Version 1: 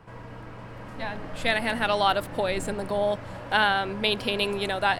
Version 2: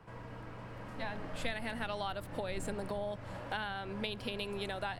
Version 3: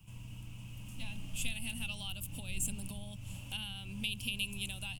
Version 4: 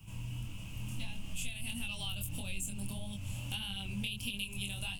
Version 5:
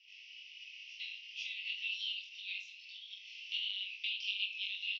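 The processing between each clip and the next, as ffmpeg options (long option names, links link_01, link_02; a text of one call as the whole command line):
ffmpeg -i in.wav -filter_complex "[0:a]acrossover=split=150[link_01][link_02];[link_02]acompressor=threshold=-30dB:ratio=6[link_03];[link_01][link_03]amix=inputs=2:normalize=0,volume=-5.5dB" out.wav
ffmpeg -i in.wav -af "firequalizer=gain_entry='entry(100,0);entry(240,-7);entry(420,-25);entry(880,-19);entry(1800,-25);entry(2700,6);entry(4100,-8);entry(6500,8);entry(12000,13)':delay=0.05:min_phase=1,volume=3.5dB" out.wav
ffmpeg -i in.wav -af "acompressor=threshold=-40dB:ratio=6,flanger=delay=20:depth=5.2:speed=1.6,volume=8.5dB" out.wav
ffmpeg -i in.wav -af "asuperpass=centerf=3400:order=20:qfactor=0.9,aecho=1:1:20|45|76.25|115.3|164.1:0.631|0.398|0.251|0.158|0.1,volume=1dB" out.wav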